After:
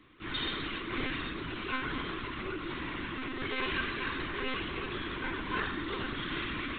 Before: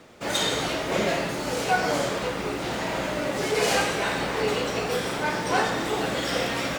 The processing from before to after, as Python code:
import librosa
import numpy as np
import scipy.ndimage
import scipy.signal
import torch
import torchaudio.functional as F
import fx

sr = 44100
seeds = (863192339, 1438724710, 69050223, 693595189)

p1 = scipy.signal.sosfilt(scipy.signal.cheby1(3, 1.0, [410.0, 990.0], 'bandstop', fs=sr, output='sos'), x)
p2 = p1 + fx.echo_single(p1, sr, ms=790, db=-12.0, dry=0)
p3 = fx.lpc_monotone(p2, sr, seeds[0], pitch_hz=260.0, order=16)
y = F.gain(torch.from_numpy(p3), -6.5).numpy()